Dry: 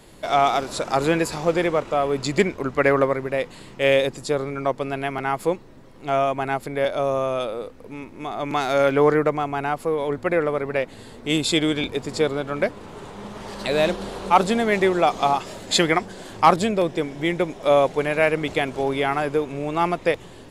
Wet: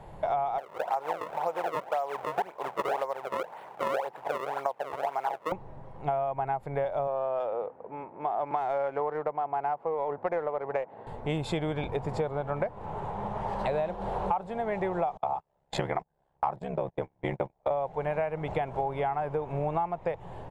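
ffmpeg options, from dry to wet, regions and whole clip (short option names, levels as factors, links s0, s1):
-filter_complex "[0:a]asettb=1/sr,asplit=3[s0][s1][s2];[s0]atrim=end=0.584[s3];[s1]atrim=start=0.58:end=5.52,asetpts=PTS-STARTPTS,afade=t=in:d=0.004:c=qsin,afade=t=out:st=4.936:d=0.004:c=qsin,acrusher=samples=32:mix=1:aa=0.000001:lfo=1:lforange=51.2:lforate=1.9,highpass=570[s4];[s2]atrim=start=5.516[s5];[s3][s4]acrossfade=d=0.004:c1=hsin:c2=qsin[s6];[s6][s5]acrossfade=d=0.004:c1=qsin:c2=hsin,asettb=1/sr,asplit=3[s7][s8][s9];[s7]atrim=end=7.074[s10];[s8]atrim=start=7.07:end=11.07,asetpts=PTS-STARTPTS,afade=t=in:d=0.004:c=qsin,afade=t=out:st=3.996:d=0.004:c=qsin,highpass=300,adynamicsmooth=sensitivity=2:basefreq=1600[s11];[s9]atrim=start=11.066[s12];[s10][s11]acrossfade=d=0.004:c1=hsin:c2=qsin[s13];[s13][s12]acrossfade=d=0.004:c1=qsin:c2=hsin,asettb=1/sr,asplit=3[s14][s15][s16];[s14]atrim=end=15.174[s17];[s15]atrim=start=15.17:end=17.71,asetpts=PTS-STARTPTS,afade=t=in:d=0.004:c=qsin,afade=t=out:st=2.536:d=0.004:c=qsin,agate=range=0.02:threshold=0.0501:ratio=16:release=100:detection=peak,aeval=exprs='val(0)*sin(2*PI*34*n/s)':c=same[s18];[s16]atrim=start=17.706[s19];[s17][s18]acrossfade=d=0.004:c1=hsin:c2=qsin[s20];[s20][s19]acrossfade=d=0.004:c1=qsin:c2=hsin,firequalizer=gain_entry='entry(160,0);entry(250,-13);entry(460,-4);entry(840,6);entry(1200,-6);entry(4500,-22)':delay=0.05:min_phase=1,acompressor=threshold=0.0316:ratio=16,volume=1.58"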